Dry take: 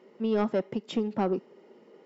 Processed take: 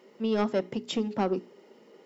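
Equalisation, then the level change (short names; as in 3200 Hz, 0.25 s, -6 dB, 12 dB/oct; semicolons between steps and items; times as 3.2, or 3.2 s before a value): high shelf 3500 Hz +10.5 dB; notches 60/120/180/240/300/360/420 Hz; 0.0 dB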